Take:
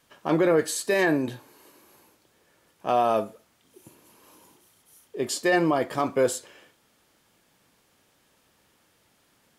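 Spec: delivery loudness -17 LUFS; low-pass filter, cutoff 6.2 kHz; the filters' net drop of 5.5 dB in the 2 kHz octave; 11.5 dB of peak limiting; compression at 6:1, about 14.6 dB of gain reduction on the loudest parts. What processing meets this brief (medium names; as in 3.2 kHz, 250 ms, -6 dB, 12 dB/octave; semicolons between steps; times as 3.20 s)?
low-pass 6.2 kHz; peaking EQ 2 kHz -6.5 dB; compression 6:1, threshold -34 dBFS; trim +26.5 dB; peak limiter -6 dBFS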